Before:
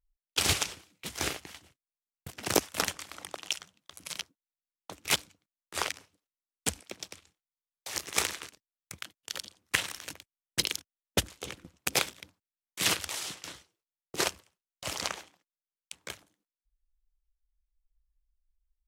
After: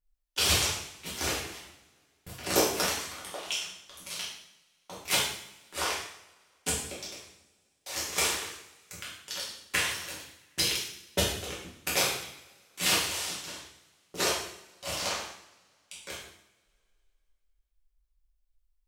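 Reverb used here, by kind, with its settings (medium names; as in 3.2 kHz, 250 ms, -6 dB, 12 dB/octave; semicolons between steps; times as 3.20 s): two-slope reverb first 0.68 s, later 2.5 s, from -25 dB, DRR -8 dB; trim -6 dB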